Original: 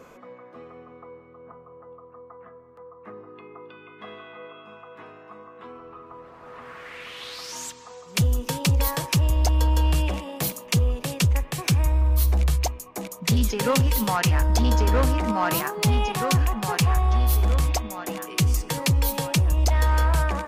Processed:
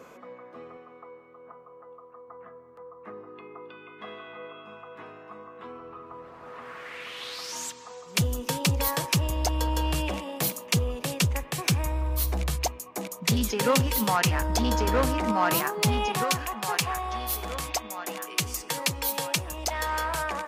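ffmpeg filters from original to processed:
ffmpeg -i in.wav -af "asetnsamples=nb_out_samples=441:pad=0,asendcmd='0.77 highpass f 490;2.28 highpass f 160;4.28 highpass f 46;6.49 highpass f 160;16.24 highpass f 620',highpass=frequency=160:poles=1" out.wav

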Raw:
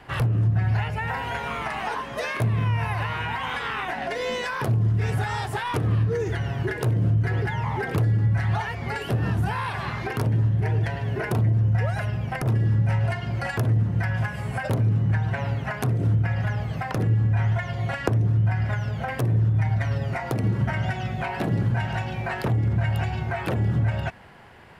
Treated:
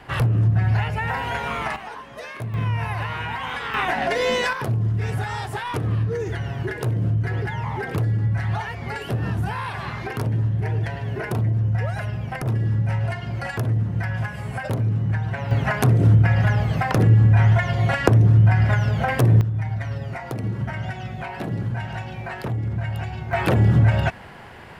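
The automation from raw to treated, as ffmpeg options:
ffmpeg -i in.wav -af "asetnsamples=nb_out_samples=441:pad=0,asendcmd='1.76 volume volume -7dB;2.54 volume volume 0dB;3.74 volume volume 6.5dB;4.53 volume volume -0.5dB;15.51 volume volume 7dB;19.41 volume volume -3dB;23.33 volume volume 7dB',volume=3dB" out.wav

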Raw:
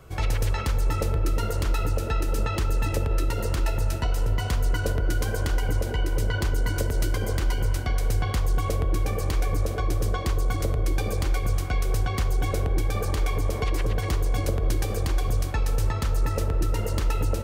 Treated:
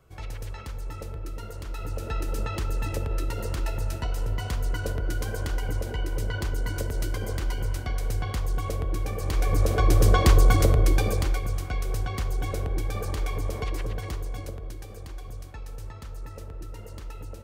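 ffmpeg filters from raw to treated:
ffmpeg -i in.wav -af "volume=8.5dB,afade=type=in:start_time=1.68:duration=0.5:silence=0.421697,afade=type=in:start_time=9.2:duration=1.09:silence=0.237137,afade=type=out:start_time=10.29:duration=1.17:silence=0.237137,afade=type=out:start_time=13.58:duration=1.16:silence=0.298538" out.wav

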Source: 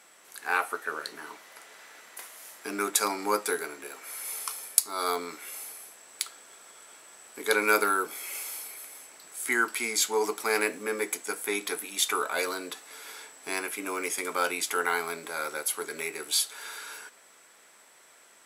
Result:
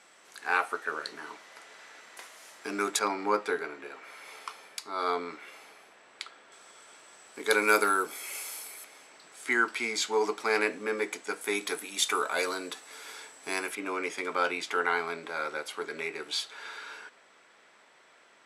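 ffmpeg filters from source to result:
ffmpeg -i in.wav -af "asetnsamples=nb_out_samples=441:pad=0,asendcmd='2.99 lowpass f 3200;6.52 lowpass f 6700;7.5 lowpass f 11000;8.84 lowpass f 5100;11.41 lowpass f 9000;13.75 lowpass f 4000',lowpass=6800" out.wav

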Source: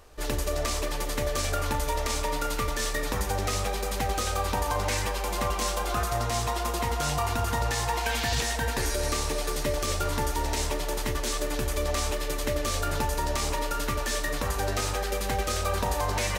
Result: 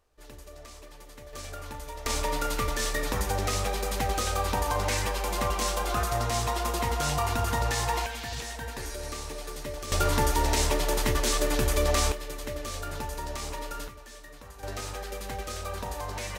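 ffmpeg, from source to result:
ffmpeg -i in.wav -af "asetnsamples=nb_out_samples=441:pad=0,asendcmd='1.33 volume volume -11.5dB;2.06 volume volume 0dB;8.06 volume volume -8.5dB;9.92 volume volume 3.5dB;12.12 volume volume -7dB;13.88 volume volume -18dB;14.63 volume volume -7.5dB',volume=-18dB" out.wav

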